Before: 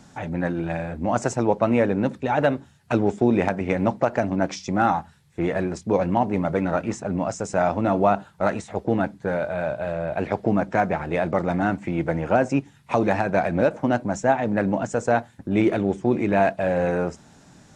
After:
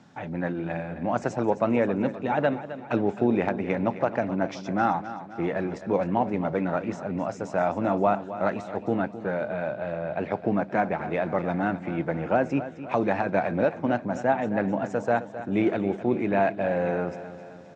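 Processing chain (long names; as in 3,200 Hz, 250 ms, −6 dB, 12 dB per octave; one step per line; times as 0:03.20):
band-pass filter 120–4,000 Hz
repeating echo 262 ms, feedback 53%, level −13 dB
level −3.5 dB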